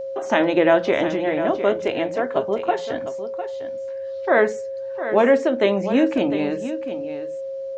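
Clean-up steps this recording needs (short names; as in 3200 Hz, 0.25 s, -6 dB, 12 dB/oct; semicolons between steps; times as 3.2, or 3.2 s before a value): notch 540 Hz, Q 30; inverse comb 0.704 s -11 dB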